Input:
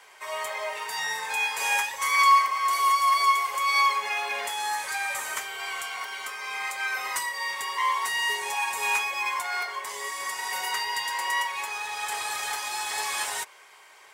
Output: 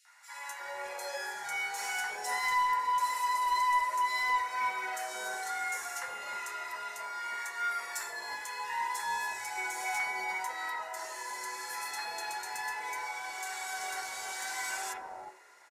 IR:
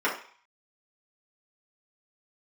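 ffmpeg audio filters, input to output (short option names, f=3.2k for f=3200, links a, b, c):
-filter_complex "[0:a]equalizer=f=3.4k:t=o:w=0.35:g=-6,asetrate=39690,aresample=44100,acrossover=split=940|2900[a][b][c];[b]adelay=50[d];[a]adelay=360[e];[e][d][c]amix=inputs=3:normalize=0,asoftclip=type=tanh:threshold=-20.5dB,asplit=2[f][g];[1:a]atrim=start_sample=2205[h];[g][h]afir=irnorm=-1:irlink=0,volume=-15.5dB[i];[f][i]amix=inputs=2:normalize=0,volume=-7dB"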